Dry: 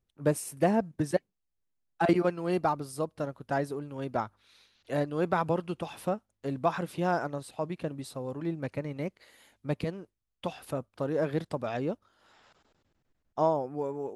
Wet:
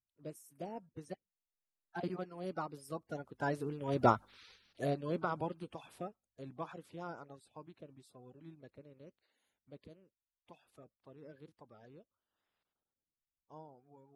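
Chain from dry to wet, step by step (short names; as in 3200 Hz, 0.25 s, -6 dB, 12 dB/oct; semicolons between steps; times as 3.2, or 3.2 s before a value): bin magnitudes rounded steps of 30 dB; Doppler pass-by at 4.19, 9 m/s, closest 1.9 m; gain +6 dB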